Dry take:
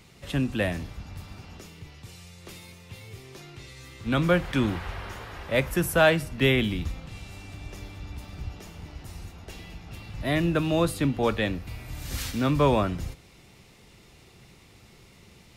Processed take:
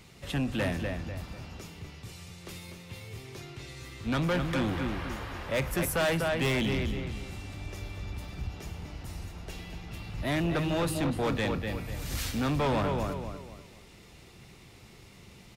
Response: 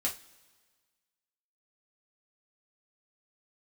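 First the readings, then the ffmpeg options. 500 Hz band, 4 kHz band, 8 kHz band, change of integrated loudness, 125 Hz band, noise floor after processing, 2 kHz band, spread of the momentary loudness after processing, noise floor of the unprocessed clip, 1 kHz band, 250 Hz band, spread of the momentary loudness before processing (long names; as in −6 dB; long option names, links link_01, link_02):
−5.0 dB, −3.0 dB, −1.0 dB, −6.0 dB, −3.0 dB, −53 dBFS, −4.5 dB, 16 LU, −54 dBFS, −3.5 dB, −4.0 dB, 22 LU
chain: -filter_complex "[0:a]asplit=2[link_01][link_02];[link_02]adelay=246,lowpass=frequency=3500:poles=1,volume=-7dB,asplit=2[link_03][link_04];[link_04]adelay=246,lowpass=frequency=3500:poles=1,volume=0.33,asplit=2[link_05][link_06];[link_06]adelay=246,lowpass=frequency=3500:poles=1,volume=0.33,asplit=2[link_07][link_08];[link_08]adelay=246,lowpass=frequency=3500:poles=1,volume=0.33[link_09];[link_01][link_03][link_05][link_07][link_09]amix=inputs=5:normalize=0,asoftclip=type=tanh:threshold=-24dB"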